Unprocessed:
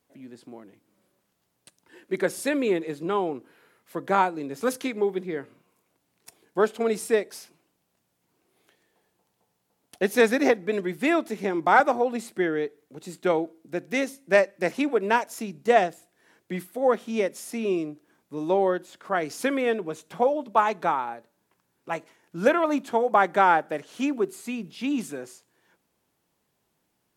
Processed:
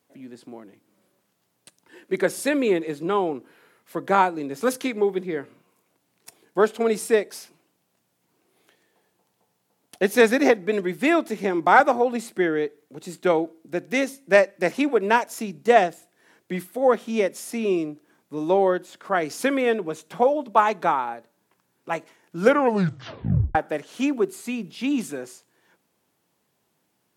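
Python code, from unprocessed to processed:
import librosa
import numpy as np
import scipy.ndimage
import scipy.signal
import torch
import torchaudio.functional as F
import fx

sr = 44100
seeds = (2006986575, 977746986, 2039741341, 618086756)

y = fx.edit(x, sr, fx.tape_stop(start_s=22.4, length_s=1.15), tone=tone)
y = scipy.signal.sosfilt(scipy.signal.butter(2, 100.0, 'highpass', fs=sr, output='sos'), y)
y = y * 10.0 ** (3.0 / 20.0)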